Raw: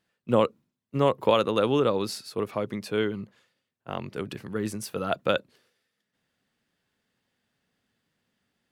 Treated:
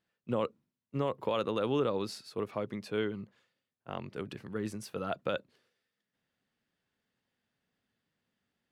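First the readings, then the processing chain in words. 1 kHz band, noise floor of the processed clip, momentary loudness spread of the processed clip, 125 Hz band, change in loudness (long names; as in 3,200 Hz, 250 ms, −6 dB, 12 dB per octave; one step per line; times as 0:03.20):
−9.0 dB, below −85 dBFS, 11 LU, −7.0 dB, −8.0 dB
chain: high-shelf EQ 8,600 Hz −9 dB
brickwall limiter −14 dBFS, peak gain reduction 7 dB
level −6 dB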